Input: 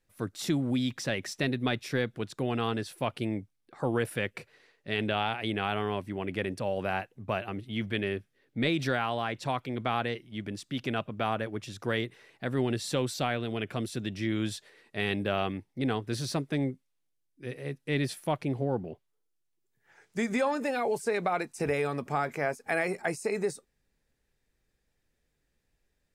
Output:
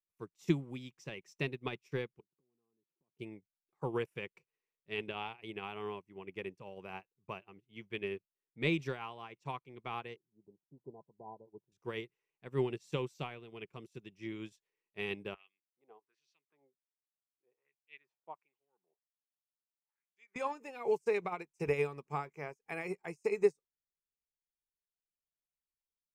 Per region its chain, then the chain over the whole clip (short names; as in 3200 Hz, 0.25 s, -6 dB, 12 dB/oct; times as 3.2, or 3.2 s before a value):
2.2–3.19 band-pass 260 Hz, Q 1.4 + compressor 10:1, threshold -46 dBFS
10.16–11.72 Chebyshev low-pass 1000 Hz, order 10 + low shelf 130 Hz -7.5 dB
15.34–20.36 HPF 180 Hz + LFO band-pass sine 1.3 Hz 640–3200 Hz
whole clip: ripple EQ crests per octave 0.75, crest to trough 9 dB; upward expander 2.5:1, over -43 dBFS